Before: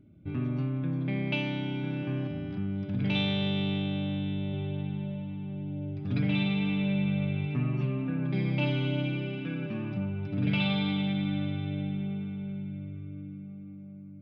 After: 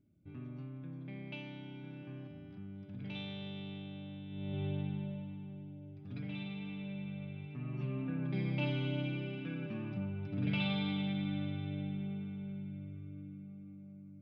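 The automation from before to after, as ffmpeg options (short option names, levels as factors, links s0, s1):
-af "volume=1.78,afade=t=in:st=4.29:d=0.37:silence=0.251189,afade=t=out:st=4.66:d=1.14:silence=0.266073,afade=t=in:st=7.57:d=0.42:silence=0.398107"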